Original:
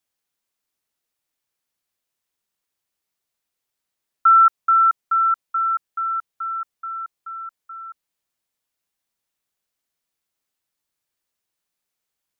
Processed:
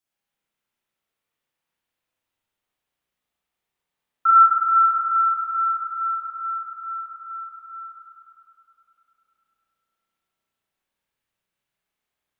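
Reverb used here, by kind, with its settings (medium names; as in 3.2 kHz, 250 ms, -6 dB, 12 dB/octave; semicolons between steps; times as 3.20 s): spring tank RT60 3 s, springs 33/49 ms, chirp 80 ms, DRR -8.5 dB; trim -6 dB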